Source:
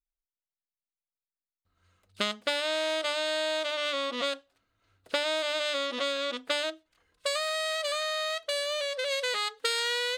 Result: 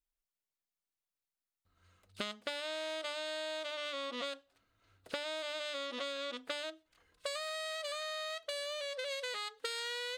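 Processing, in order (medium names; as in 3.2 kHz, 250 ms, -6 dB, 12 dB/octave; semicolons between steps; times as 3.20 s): compression 2.5:1, threshold -41 dBFS, peak gain reduction 12 dB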